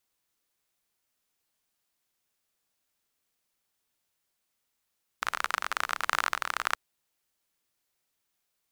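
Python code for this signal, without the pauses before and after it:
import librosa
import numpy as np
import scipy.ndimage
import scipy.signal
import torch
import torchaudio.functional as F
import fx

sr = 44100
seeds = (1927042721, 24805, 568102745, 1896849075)

y = fx.rain(sr, seeds[0], length_s=1.53, drops_per_s=34.0, hz=1300.0, bed_db=-27)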